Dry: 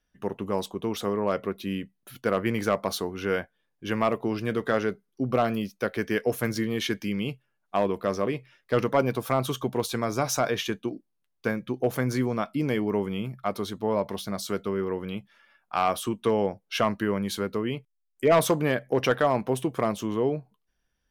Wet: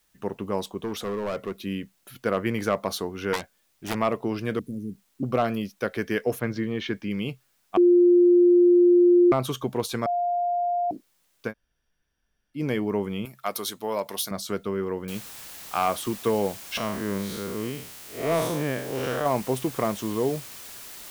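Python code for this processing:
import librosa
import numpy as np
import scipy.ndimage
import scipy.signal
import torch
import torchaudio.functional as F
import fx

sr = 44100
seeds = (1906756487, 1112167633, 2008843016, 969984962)

y = fx.clip_hard(x, sr, threshold_db=-25.0, at=(0.77, 1.61))
y = fx.self_delay(y, sr, depth_ms=0.96, at=(3.33, 3.95))
y = fx.ellip_bandstop(y, sr, low_hz=260.0, high_hz=9200.0, order=3, stop_db=60, at=(4.59, 5.23))
y = fx.air_absorb(y, sr, metres=210.0, at=(6.38, 7.09), fade=0.02)
y = fx.riaa(y, sr, side='recording', at=(13.25, 14.31))
y = fx.noise_floor_step(y, sr, seeds[0], at_s=15.08, before_db=-69, after_db=-42, tilt_db=0.0)
y = fx.spec_blur(y, sr, span_ms=156.0, at=(16.77, 19.26))
y = fx.edit(y, sr, fx.bleep(start_s=7.77, length_s=1.55, hz=352.0, db=-13.0),
    fx.bleep(start_s=10.06, length_s=0.85, hz=703.0, db=-22.0),
    fx.room_tone_fill(start_s=11.49, length_s=1.09, crossfade_s=0.1), tone=tone)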